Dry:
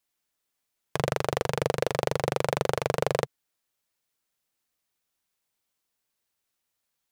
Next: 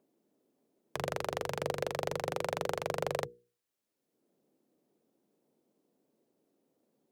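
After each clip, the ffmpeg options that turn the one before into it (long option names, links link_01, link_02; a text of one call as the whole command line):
ffmpeg -i in.wav -filter_complex "[0:a]bandreject=frequency=60:width_type=h:width=6,bandreject=frequency=120:width_type=h:width=6,bandreject=frequency=180:width_type=h:width=6,bandreject=frequency=240:width_type=h:width=6,bandreject=frequency=300:width_type=h:width=6,bandreject=frequency=360:width_type=h:width=6,bandreject=frequency=420:width_type=h:width=6,bandreject=frequency=480:width_type=h:width=6,acrossover=split=210|440|7000[link_01][link_02][link_03][link_04];[link_01]flanger=delay=18:depth=5:speed=0.39[link_05];[link_02]acompressor=mode=upward:threshold=-42dB:ratio=2.5[link_06];[link_05][link_06][link_03][link_04]amix=inputs=4:normalize=0,volume=-7dB" out.wav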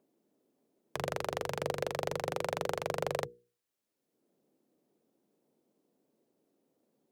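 ffmpeg -i in.wav -af anull out.wav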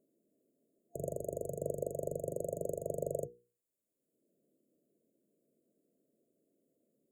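ffmpeg -i in.wav -af "afftfilt=real='re*(1-between(b*sr/4096,690,6600))':imag='im*(1-between(b*sr/4096,690,6600))':win_size=4096:overlap=0.75,volume=-1.5dB" out.wav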